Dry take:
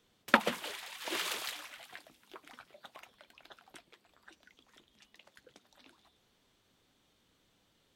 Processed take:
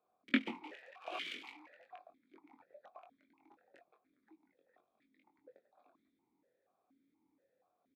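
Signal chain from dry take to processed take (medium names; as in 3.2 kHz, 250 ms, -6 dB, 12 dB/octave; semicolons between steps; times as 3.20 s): local Wiener filter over 15 samples; doubling 22 ms -5.5 dB; stepped vowel filter 4.2 Hz; trim +6 dB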